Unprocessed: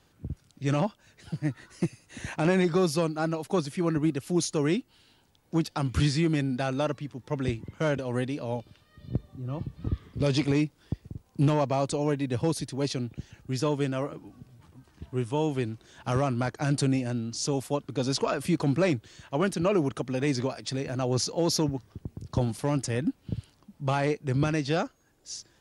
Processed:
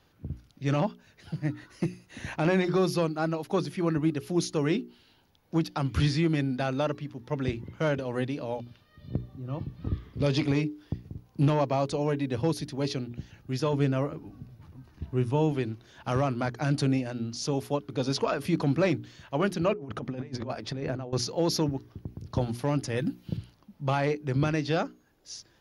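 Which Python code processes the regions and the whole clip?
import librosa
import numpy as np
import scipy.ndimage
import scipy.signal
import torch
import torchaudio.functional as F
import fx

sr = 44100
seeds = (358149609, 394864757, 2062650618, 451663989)

y = fx.chain(x, sr, fx.low_shelf(hz=200.0, db=8.0),
    fx.notch(hz=3200.0, q=15.0), at=(13.73, 15.52))
y = fx.chain(y, sr, fx.high_shelf(hz=2800.0, db=-11.0),
    fx.over_compress(threshold_db=-33.0, ratio=-0.5), at=(19.73, 21.13))
y = fx.chain(y, sr, fx.high_shelf(hz=3900.0, db=9.5),
    fx.comb(ms=5.8, depth=0.39), at=(22.97, 23.37))
y = fx.peak_eq(y, sr, hz=8100.0, db=-14.5, octaves=0.42)
y = fx.hum_notches(y, sr, base_hz=60, count=7)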